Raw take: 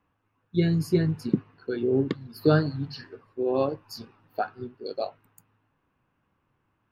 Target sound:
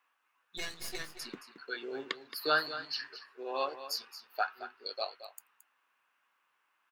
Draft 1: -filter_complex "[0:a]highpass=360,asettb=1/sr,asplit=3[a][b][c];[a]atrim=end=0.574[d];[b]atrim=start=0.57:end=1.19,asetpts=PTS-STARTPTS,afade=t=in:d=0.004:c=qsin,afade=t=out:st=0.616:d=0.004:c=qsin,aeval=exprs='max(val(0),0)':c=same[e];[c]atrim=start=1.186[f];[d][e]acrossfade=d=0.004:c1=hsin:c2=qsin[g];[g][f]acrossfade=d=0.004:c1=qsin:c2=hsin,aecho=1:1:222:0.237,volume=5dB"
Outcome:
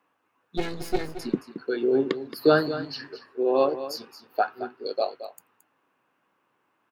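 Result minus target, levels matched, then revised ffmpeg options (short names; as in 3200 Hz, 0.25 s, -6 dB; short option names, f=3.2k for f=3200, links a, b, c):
500 Hz band +5.5 dB
-filter_complex "[0:a]highpass=1.3k,asettb=1/sr,asplit=3[a][b][c];[a]atrim=end=0.574[d];[b]atrim=start=0.57:end=1.19,asetpts=PTS-STARTPTS,afade=t=in:d=0.004:c=qsin,afade=t=out:st=0.616:d=0.004:c=qsin,aeval=exprs='max(val(0),0)':c=same[e];[c]atrim=start=1.186[f];[d][e]acrossfade=d=0.004:c1=hsin:c2=qsin[g];[g][f]acrossfade=d=0.004:c1=qsin:c2=hsin,aecho=1:1:222:0.237,volume=5dB"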